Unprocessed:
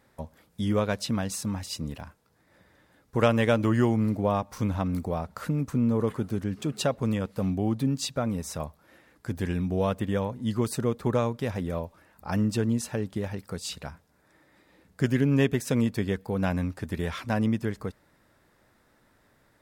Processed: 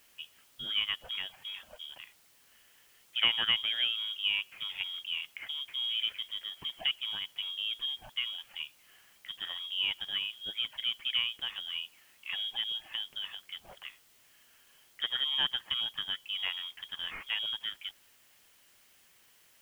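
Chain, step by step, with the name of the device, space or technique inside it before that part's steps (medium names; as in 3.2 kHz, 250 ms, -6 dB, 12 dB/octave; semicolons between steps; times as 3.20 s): scrambled radio voice (band-pass 310–3100 Hz; frequency inversion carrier 3.5 kHz; white noise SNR 27 dB); trim -4 dB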